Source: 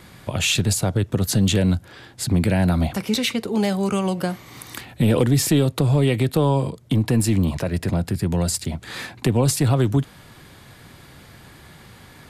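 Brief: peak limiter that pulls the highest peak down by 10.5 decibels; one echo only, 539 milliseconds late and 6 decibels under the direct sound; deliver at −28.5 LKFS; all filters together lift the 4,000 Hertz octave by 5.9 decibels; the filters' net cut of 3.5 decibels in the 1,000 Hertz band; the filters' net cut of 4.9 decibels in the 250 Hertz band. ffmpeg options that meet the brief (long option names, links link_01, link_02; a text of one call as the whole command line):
ffmpeg -i in.wav -af "equalizer=frequency=250:width_type=o:gain=-7,equalizer=frequency=1000:width_type=o:gain=-4.5,equalizer=frequency=4000:width_type=o:gain=7.5,alimiter=limit=-16dB:level=0:latency=1,aecho=1:1:539:0.501,volume=-3.5dB" out.wav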